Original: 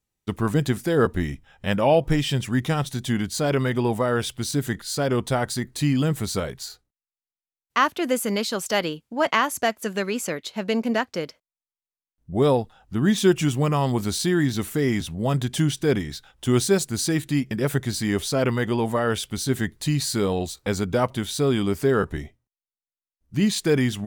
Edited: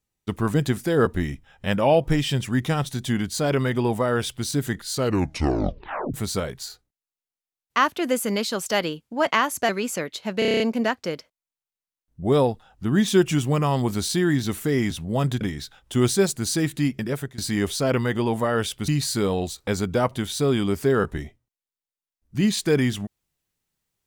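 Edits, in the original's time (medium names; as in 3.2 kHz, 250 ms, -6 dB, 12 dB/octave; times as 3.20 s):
4.91 s: tape stop 1.23 s
9.69–10.00 s: delete
10.70 s: stutter 0.03 s, 8 plays
15.51–15.93 s: delete
17.49–17.90 s: fade out, to -19.5 dB
19.40–19.87 s: delete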